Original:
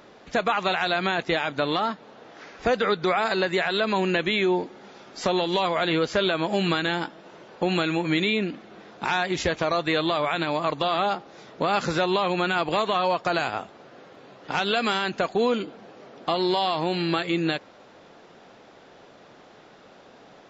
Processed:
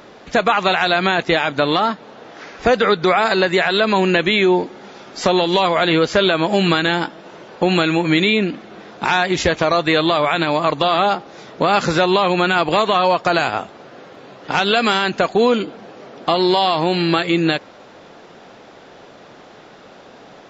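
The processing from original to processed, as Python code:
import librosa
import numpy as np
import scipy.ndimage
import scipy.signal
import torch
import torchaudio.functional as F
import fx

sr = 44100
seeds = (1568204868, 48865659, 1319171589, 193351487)

y = x * 10.0 ** (8.0 / 20.0)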